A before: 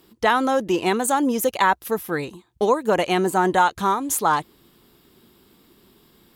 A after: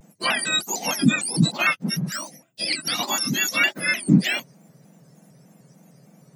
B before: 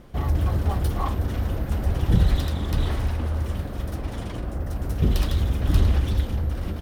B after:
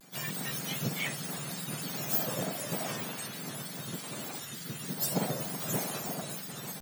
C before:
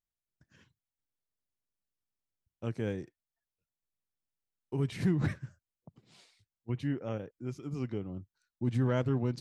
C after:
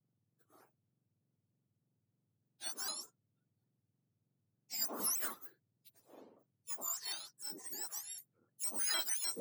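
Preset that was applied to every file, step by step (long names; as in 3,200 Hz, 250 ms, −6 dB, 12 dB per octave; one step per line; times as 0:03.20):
frequency axis turned over on the octave scale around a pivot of 1,500 Hz
pitch modulation by a square or saw wave square 3.3 Hz, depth 160 cents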